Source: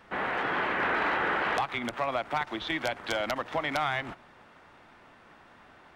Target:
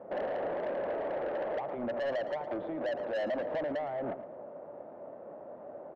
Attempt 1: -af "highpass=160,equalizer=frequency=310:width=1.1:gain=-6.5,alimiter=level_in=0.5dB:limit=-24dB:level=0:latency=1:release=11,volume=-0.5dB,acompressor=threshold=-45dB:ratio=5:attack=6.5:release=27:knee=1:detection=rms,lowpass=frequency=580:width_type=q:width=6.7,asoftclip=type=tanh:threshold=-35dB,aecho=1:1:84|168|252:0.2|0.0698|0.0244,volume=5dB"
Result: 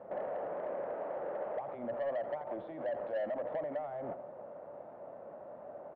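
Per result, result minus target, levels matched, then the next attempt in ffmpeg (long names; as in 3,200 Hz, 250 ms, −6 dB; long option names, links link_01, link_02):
downward compressor: peak gain reduction +5 dB; echo 28 ms early; 250 Hz band −2.5 dB
-af "highpass=160,equalizer=frequency=310:width=1.1:gain=-6.5,alimiter=level_in=0.5dB:limit=-24dB:level=0:latency=1:release=11,volume=-0.5dB,acompressor=threshold=-38dB:ratio=5:attack=6.5:release=27:knee=1:detection=rms,lowpass=frequency=580:width_type=q:width=6.7,asoftclip=type=tanh:threshold=-35dB,aecho=1:1:84|168|252:0.2|0.0698|0.0244,volume=5dB"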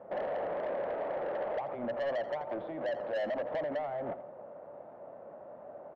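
echo 28 ms early; 250 Hz band −3.0 dB
-af "highpass=160,equalizer=frequency=310:width=1.1:gain=-6.5,alimiter=level_in=0.5dB:limit=-24dB:level=0:latency=1:release=11,volume=-0.5dB,acompressor=threshold=-38dB:ratio=5:attack=6.5:release=27:knee=1:detection=rms,lowpass=frequency=580:width_type=q:width=6.7,asoftclip=type=tanh:threshold=-35dB,aecho=1:1:112|224|336:0.2|0.0698|0.0244,volume=5dB"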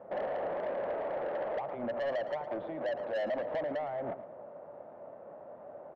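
250 Hz band −3.0 dB
-af "highpass=160,alimiter=level_in=0.5dB:limit=-24dB:level=0:latency=1:release=11,volume=-0.5dB,acompressor=threshold=-38dB:ratio=5:attack=6.5:release=27:knee=1:detection=rms,lowpass=frequency=580:width_type=q:width=6.7,asoftclip=type=tanh:threshold=-35dB,aecho=1:1:112|224|336:0.2|0.0698|0.0244,volume=5dB"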